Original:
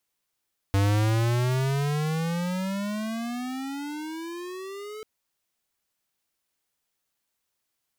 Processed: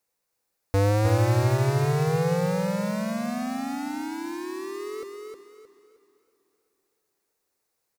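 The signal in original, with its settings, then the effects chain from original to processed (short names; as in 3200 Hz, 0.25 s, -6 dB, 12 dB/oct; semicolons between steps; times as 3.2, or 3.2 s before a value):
gliding synth tone square, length 4.29 s, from 97.4 Hz, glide +26 st, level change -17.5 dB, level -21 dB
thirty-one-band EQ 500 Hz +10 dB, 800 Hz +4 dB, 3150 Hz -9 dB; feedback echo 0.311 s, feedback 31%, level -4.5 dB; warbling echo 0.127 s, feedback 78%, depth 197 cents, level -23 dB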